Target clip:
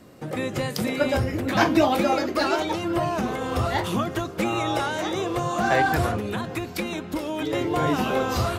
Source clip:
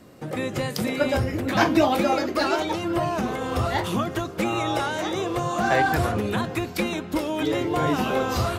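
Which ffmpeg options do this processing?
-filter_complex "[0:a]asettb=1/sr,asplit=3[a][b][c];[a]atrim=end=6.154[d];[b]atrim=start=6.15:end=7.53,asetpts=PTS-STARTPTS,afade=t=in:d=0.004:c=qsin,afade=t=out:st=1.376:d=0.004:c=qsin,acompressor=threshold=-26dB:ratio=2.5[e];[c]atrim=start=7.526[f];[d][e]acrossfade=d=0.004:c1=hsin:c2=qsin[g];[g][f]acrossfade=d=0.004:c1=qsin:c2=hsin"

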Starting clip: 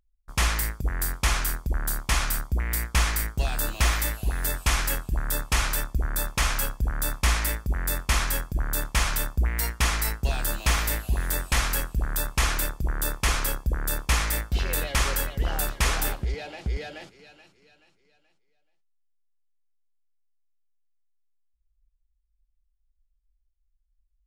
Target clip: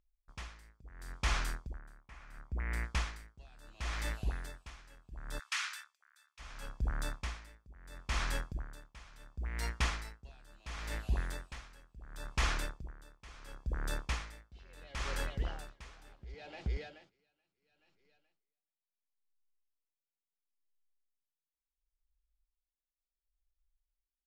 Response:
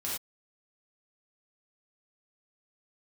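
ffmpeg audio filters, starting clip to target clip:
-filter_complex "[0:a]lowpass=5.8k,asettb=1/sr,asplit=3[a][b][c];[a]atrim=end=1.794[d];[b]atrim=start=1.79:end=2.84,asetpts=PTS-STARTPTS,afade=t=in:d=0.004:c=qsin,afade=t=out:st=1.046:d=0.004:c=qsin,highshelf=f=2.8k:t=q:w=1.5:g=-6.5[e];[c]atrim=start=2.836[f];[d][e]acrossfade=d=0.004:c1=hsin:c2=qsin[g];[g][f]acrossfade=d=0.004:c1=qsin:c2=hsin,asplit=3[h][i][j];[h]afade=t=out:st=5.38:d=0.02[k];[i]highpass=f=1.3k:w=0.5412,highpass=f=1.3k:w=1.3066,afade=t=in:st=5.38:d=0.02,afade=t=out:st=6.38:d=0.02[l];[j]afade=t=in:st=6.38:d=0.02[m];[k][l][m]amix=inputs=3:normalize=0,aeval=exprs='val(0)*pow(10,-23*(0.5-0.5*cos(2*PI*0.72*n/s))/20)':c=same,volume=-7dB"

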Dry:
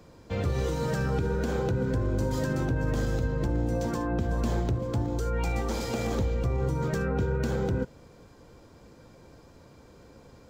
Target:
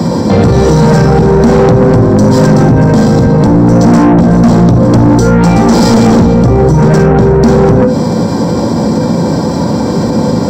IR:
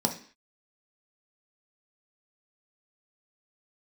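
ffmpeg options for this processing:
-filter_complex "[0:a]acompressor=threshold=-31dB:ratio=3[a];[1:a]atrim=start_sample=2205,afade=t=out:st=0.15:d=0.01,atrim=end_sample=7056[b];[a][b]afir=irnorm=-1:irlink=0,asoftclip=type=tanh:threshold=-21dB,alimiter=level_in=30dB:limit=-1dB:release=50:level=0:latency=1,volume=-1dB"

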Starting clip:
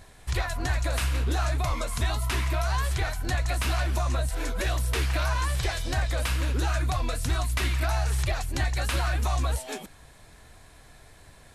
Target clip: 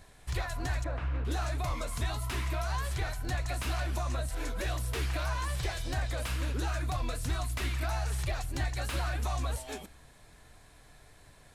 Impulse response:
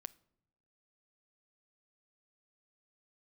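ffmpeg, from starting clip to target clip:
-filter_complex "[0:a]acrossover=split=800[a][b];[b]asoftclip=type=tanh:threshold=-27.5dB[c];[a][c]amix=inputs=2:normalize=0,asettb=1/sr,asplit=3[d][e][f];[d]atrim=end=0.844[g];[e]atrim=start=0.84:end=1.25,asetpts=PTS-STARTPTS,afade=t=in:d=0.004:c=qsin,afade=t=out:st=0.406:d=0.004:c=qsin,lowpass=1.6k[h];[f]atrim=start=1.246[i];[g][h]acrossfade=d=0.004:c1=hsin:c2=qsin[j];[j][i]acrossfade=d=0.004:c1=qsin:c2=hsin[k];[1:a]atrim=start_sample=2205[l];[k][l]afir=irnorm=-1:irlink=0"

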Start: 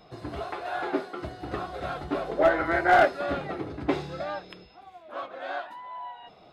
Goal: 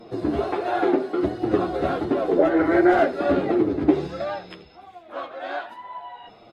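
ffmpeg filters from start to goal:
-af "asetnsamples=n=441:p=0,asendcmd='4.07 equalizer g 3',equalizer=f=320:w=0.81:g=14.5,acompressor=threshold=-16dB:ratio=12,flanger=delay=8.5:depth=4.4:regen=5:speed=1.4:shape=sinusoidal,aecho=1:1:81:0.119,volume=5.5dB" -ar 44100 -c:a aac -b:a 48k

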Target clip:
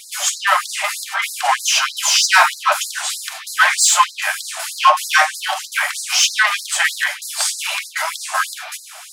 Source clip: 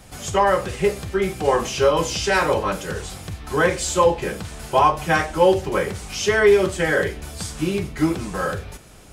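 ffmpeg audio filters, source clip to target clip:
-af "apsyclip=12.5dB,acontrast=38,afftfilt=real='re*gte(b*sr/1024,580*pow(4000/580,0.5+0.5*sin(2*PI*3.2*pts/sr)))':imag='im*gte(b*sr/1024,580*pow(4000/580,0.5+0.5*sin(2*PI*3.2*pts/sr)))':win_size=1024:overlap=0.75,volume=-3.5dB"

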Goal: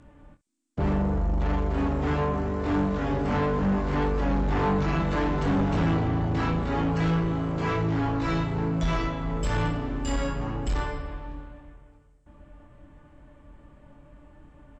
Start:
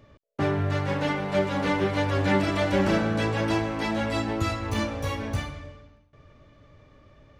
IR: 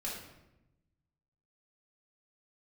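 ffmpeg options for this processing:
-af "asetrate=22050,aresample=44100,lowpass=f=8k:t=q:w=3.7,aecho=1:1:25|66:0.501|0.133,asoftclip=type=tanh:threshold=-22dB,volume=2.5dB"

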